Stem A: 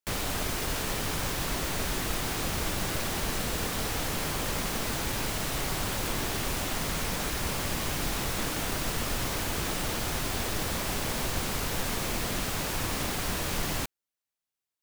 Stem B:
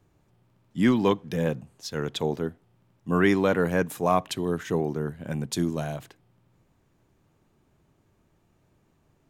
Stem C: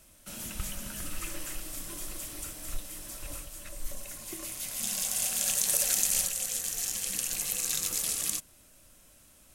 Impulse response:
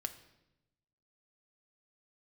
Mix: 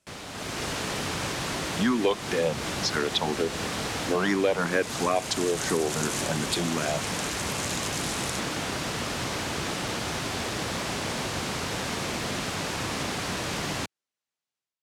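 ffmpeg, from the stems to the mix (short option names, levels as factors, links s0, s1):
-filter_complex "[0:a]volume=0.422[s0];[1:a]highpass=f=530:p=1,asplit=2[s1][s2];[s2]afreqshift=2.9[s3];[s1][s3]amix=inputs=2:normalize=1,adelay=1000,volume=1.33[s4];[2:a]volume=0.282[s5];[s0][s4][s5]amix=inputs=3:normalize=0,dynaudnorm=f=310:g=3:m=3.16,highpass=100,lowpass=7500,acompressor=threshold=0.0631:ratio=2.5"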